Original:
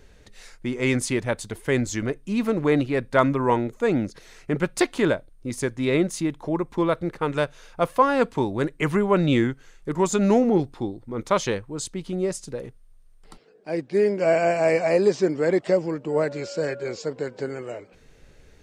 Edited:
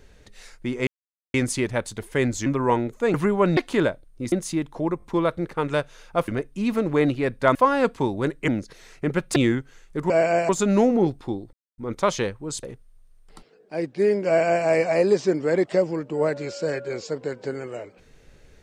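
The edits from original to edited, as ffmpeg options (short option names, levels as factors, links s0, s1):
-filter_complex "[0:a]asplit=16[s0][s1][s2][s3][s4][s5][s6][s7][s8][s9][s10][s11][s12][s13][s14][s15];[s0]atrim=end=0.87,asetpts=PTS-STARTPTS,afade=t=out:st=0.866:d=0.004:c=hsin,apad=pad_dur=0.47[s16];[s1]atrim=start=0.87:end=1.992,asetpts=PTS-STARTPTS,afade=t=in:d=0.004:c=hsin[s17];[s2]atrim=start=3.258:end=3.942[s18];[s3]atrim=start=8.848:end=9.282[s19];[s4]atrim=start=4.818:end=5.572[s20];[s5]atrim=start=5.998:end=6.682[s21];[s6]atrim=start=6.658:end=6.682[s22];[s7]atrim=start=6.658:end=7.922[s23];[s8]atrim=start=1.988:end=3.262[s24];[s9]atrim=start=7.918:end=8.852[s25];[s10]atrim=start=3.938:end=4.822[s26];[s11]atrim=start=9.278:end=10.022[s27];[s12]atrim=start=14.218:end=14.612[s28];[s13]atrim=start=10.018:end=11.06,asetpts=PTS-STARTPTS,afade=t=out:st=1.038:d=0.004:c=hsin,apad=pad_dur=0.25[s29];[s14]atrim=start=11.06:end=11.912,asetpts=PTS-STARTPTS,afade=t=in:d=0.004:c=hsin[s30];[s15]atrim=start=12.578[s31];[s16][s17]concat=n=2:v=0:a=1[s32];[s32][s18]acrossfade=d=0.004:c1=hsin:c2=hsin[s33];[s33][s19]acrossfade=d=0.004:c1=hsin:c2=hsin[s34];[s34][s20]acrossfade=d=0.004:c1=hsin:c2=hsin[s35];[s35][s21]acrossfade=d=0.004:c1=hsin:c2=hsin[s36];[s36][s22]acrossfade=d=0.004:c1=hsin:c2=hsin[s37];[s37][s23]acrossfade=d=0.004:c1=hsin:c2=hsin[s38];[s38][s24]acrossfade=d=0.004:c1=hsin:c2=hsin[s39];[s39][s25]acrossfade=d=0.004:c1=hsin:c2=hsin[s40];[s40][s26]acrossfade=d=0.004:c1=hsin:c2=hsin[s41];[s41][s27]acrossfade=d=0.004:c1=hsin:c2=hsin[s42];[s42][s28]acrossfade=d=0.004:c1=hsin:c2=hsin[s43];[s29][s30]concat=n=2:v=0:a=1[s44];[s43][s44]acrossfade=d=0.004:c1=hsin:c2=hsin[s45];[s45][s31]acrossfade=d=0.004:c1=hsin:c2=hsin"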